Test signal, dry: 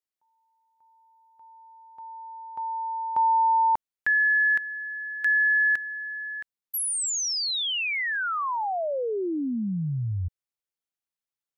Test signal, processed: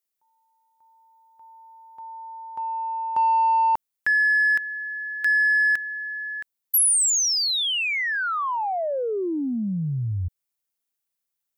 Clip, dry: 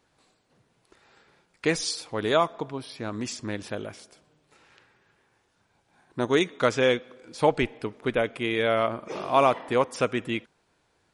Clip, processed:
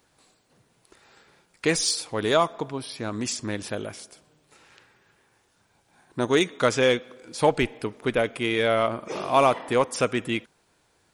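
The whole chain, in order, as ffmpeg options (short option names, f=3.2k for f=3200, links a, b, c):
-filter_complex "[0:a]asplit=2[a][b];[b]asoftclip=type=tanh:threshold=-23.5dB,volume=-10dB[c];[a][c]amix=inputs=2:normalize=0,highshelf=f=7.9k:g=11"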